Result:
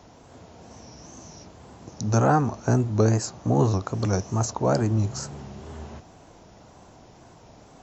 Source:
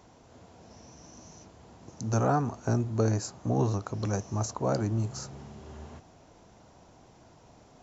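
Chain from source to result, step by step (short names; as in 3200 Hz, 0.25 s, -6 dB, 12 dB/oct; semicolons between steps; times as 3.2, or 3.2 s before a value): wow and flutter 93 cents; gain +6 dB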